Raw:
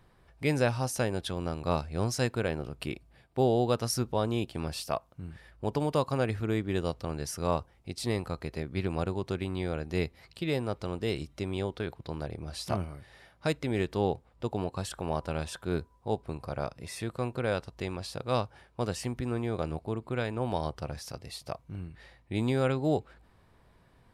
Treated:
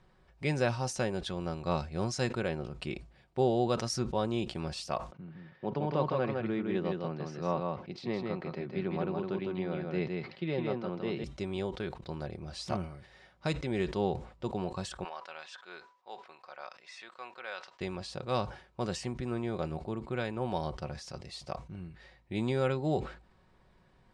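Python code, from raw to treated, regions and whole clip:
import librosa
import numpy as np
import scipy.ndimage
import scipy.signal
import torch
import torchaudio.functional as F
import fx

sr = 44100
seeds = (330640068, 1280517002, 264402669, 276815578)

y = fx.chain(x, sr, fx.highpass(hz=130.0, slope=24),
    fx.air_absorb(metres=250.0),
    fx.echo_single(ms=160, db=-3.5), at=(5.12, 11.24))
y = fx.chain(y, sr, fx.highpass(hz=1100.0, slope=12),
    fx.air_absorb(metres=110.0), at=(15.04, 17.81))
y = scipy.signal.sosfilt(scipy.signal.butter(4, 7900.0, 'lowpass', fs=sr, output='sos'), y)
y = y + 0.38 * np.pad(y, (int(5.4 * sr / 1000.0), 0))[:len(y)]
y = fx.sustainer(y, sr, db_per_s=120.0)
y = F.gain(torch.from_numpy(y), -3.0).numpy()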